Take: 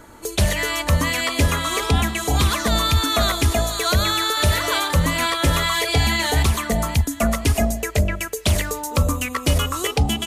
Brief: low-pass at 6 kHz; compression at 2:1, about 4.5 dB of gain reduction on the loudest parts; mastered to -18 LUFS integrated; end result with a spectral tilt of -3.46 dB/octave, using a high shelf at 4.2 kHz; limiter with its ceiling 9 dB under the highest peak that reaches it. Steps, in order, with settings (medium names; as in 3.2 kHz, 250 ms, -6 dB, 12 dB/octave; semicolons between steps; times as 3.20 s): low-pass 6 kHz; treble shelf 4.2 kHz +7 dB; compression 2:1, threshold -21 dBFS; trim +7.5 dB; peak limiter -9.5 dBFS